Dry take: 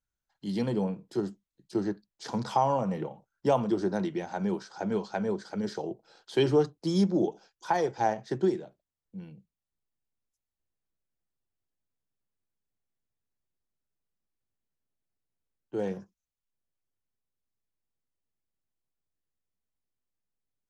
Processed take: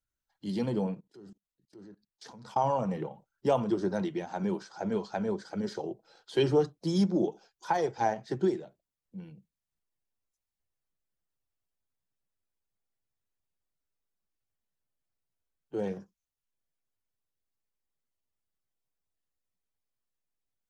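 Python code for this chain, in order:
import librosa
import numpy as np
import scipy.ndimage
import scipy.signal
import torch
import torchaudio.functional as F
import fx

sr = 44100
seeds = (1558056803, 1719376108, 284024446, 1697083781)

y = fx.spec_quant(x, sr, step_db=15)
y = fx.level_steps(y, sr, step_db=24, at=(0.94, 2.62), fade=0.02)
y = y * 10.0 ** (-1.0 / 20.0)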